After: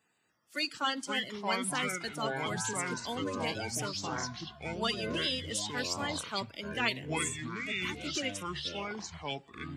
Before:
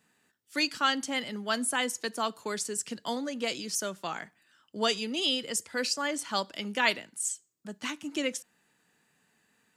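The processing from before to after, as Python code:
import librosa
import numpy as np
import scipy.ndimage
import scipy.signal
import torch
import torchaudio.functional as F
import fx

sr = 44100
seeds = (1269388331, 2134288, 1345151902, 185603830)

y = fx.spec_quant(x, sr, step_db=30)
y = fx.echo_pitch(y, sr, ms=291, semitones=-6, count=3, db_per_echo=-3.0)
y = F.gain(torch.from_numpy(y), -4.5).numpy()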